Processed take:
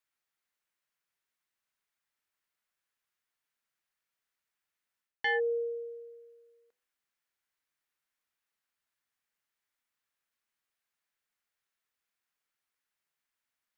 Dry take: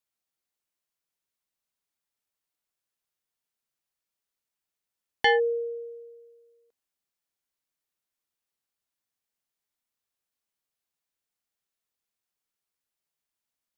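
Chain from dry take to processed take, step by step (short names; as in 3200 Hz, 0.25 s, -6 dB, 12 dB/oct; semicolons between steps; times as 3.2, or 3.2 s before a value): bell 1700 Hz +9.5 dB 1.6 oct; de-hum 98.32 Hz, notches 8; reverse; compressor 6:1, threshold -25 dBFS, peak gain reduction 14 dB; reverse; gain -3 dB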